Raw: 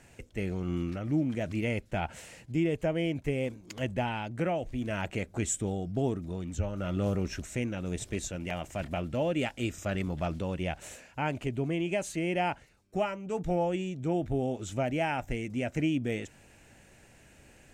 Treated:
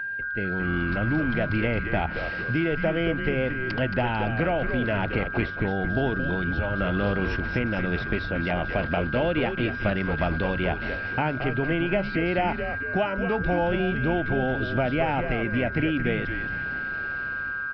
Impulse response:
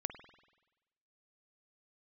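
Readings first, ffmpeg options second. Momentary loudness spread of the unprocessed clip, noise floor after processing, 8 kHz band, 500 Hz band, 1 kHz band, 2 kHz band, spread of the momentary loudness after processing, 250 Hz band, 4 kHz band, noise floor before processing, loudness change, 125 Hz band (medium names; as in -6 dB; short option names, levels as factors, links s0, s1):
6 LU, -32 dBFS, under -25 dB, +6.0 dB, +7.0 dB, +15.0 dB, 4 LU, +5.5 dB, +6.0 dB, -58 dBFS, +6.5 dB, +5.5 dB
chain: -filter_complex "[0:a]dynaudnorm=f=270:g=5:m=5.31,aeval=exprs='val(0)+0.0398*sin(2*PI*1600*n/s)':c=same,acrossover=split=780|1600[s0][s1][s2];[s0]acompressor=threshold=0.0501:ratio=4[s3];[s1]acompressor=threshold=0.0251:ratio=4[s4];[s2]acompressor=threshold=0.0141:ratio=4[s5];[s3][s4][s5]amix=inputs=3:normalize=0,bandreject=f=47.07:t=h:w=4,bandreject=f=94.14:t=h:w=4,bandreject=f=141.21:t=h:w=4,asplit=6[s6][s7][s8][s9][s10][s11];[s7]adelay=223,afreqshift=-140,volume=0.447[s12];[s8]adelay=446,afreqshift=-280,volume=0.207[s13];[s9]adelay=669,afreqshift=-420,volume=0.0944[s14];[s10]adelay=892,afreqshift=-560,volume=0.0437[s15];[s11]adelay=1115,afreqshift=-700,volume=0.02[s16];[s6][s12][s13][s14][s15][s16]amix=inputs=6:normalize=0,aresample=11025,aresample=44100"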